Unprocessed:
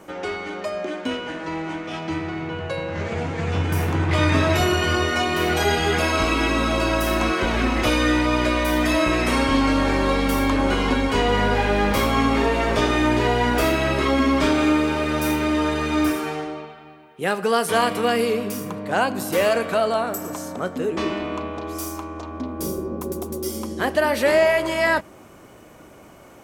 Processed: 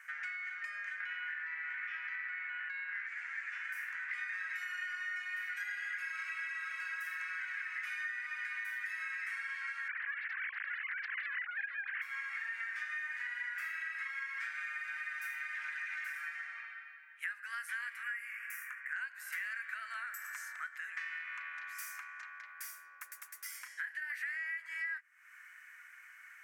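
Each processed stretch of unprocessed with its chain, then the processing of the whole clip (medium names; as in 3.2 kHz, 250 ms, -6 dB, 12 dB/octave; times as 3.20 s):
1.00–3.07 s: band-pass 420–3400 Hz + level flattener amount 100%
9.88–12.02 s: formants replaced by sine waves + elliptic high-pass 240 Hz + loudspeaker Doppler distortion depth 0.56 ms
15.55–16.18 s: comb 2 ms, depth 38% + loudspeaker Doppler distortion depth 0.15 ms
18.03–18.96 s: static phaser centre 1.7 kHz, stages 4 + doubling 22 ms -8.5 dB
23.60–24.10 s: band-stop 1.2 kHz, Q 7.9 + compression 2.5:1, threshold -23 dBFS + doubling 31 ms -8.5 dB
whole clip: Chebyshev high-pass 1.6 kHz, order 4; resonant high shelf 2.6 kHz -10.5 dB, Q 3; compression, threshold -39 dBFS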